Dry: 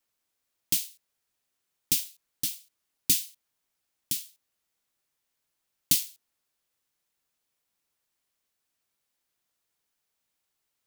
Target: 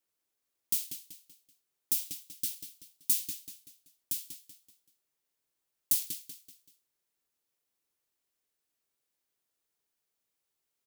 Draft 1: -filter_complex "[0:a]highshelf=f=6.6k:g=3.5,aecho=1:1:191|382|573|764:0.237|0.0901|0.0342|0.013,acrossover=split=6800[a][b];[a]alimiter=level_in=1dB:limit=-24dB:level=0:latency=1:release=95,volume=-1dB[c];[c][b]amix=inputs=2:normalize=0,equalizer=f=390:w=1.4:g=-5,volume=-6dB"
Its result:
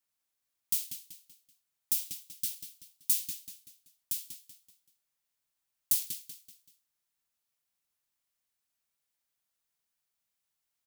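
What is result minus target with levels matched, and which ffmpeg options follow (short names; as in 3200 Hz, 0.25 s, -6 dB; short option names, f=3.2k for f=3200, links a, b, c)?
500 Hz band -8.5 dB
-filter_complex "[0:a]highshelf=f=6.6k:g=3.5,aecho=1:1:191|382|573|764:0.237|0.0901|0.0342|0.013,acrossover=split=6800[a][b];[a]alimiter=level_in=1dB:limit=-24dB:level=0:latency=1:release=95,volume=-1dB[c];[c][b]amix=inputs=2:normalize=0,equalizer=f=390:w=1.4:g=5.5,volume=-6dB"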